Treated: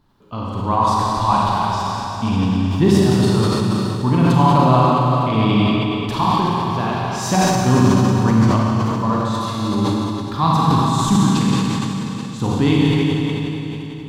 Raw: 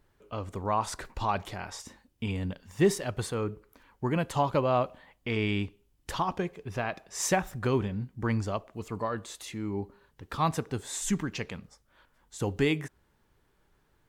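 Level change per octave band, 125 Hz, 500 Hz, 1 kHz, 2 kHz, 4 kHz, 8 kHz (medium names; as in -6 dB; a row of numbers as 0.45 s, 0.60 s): +17.5 dB, +9.5 dB, +15.5 dB, +8.5 dB, +15.0 dB, +7.5 dB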